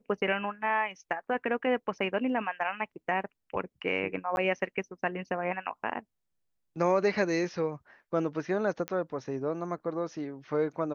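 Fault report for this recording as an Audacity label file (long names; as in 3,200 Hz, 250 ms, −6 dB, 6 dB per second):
4.360000	4.370000	drop-out 11 ms
8.880000	8.880000	click −19 dBFS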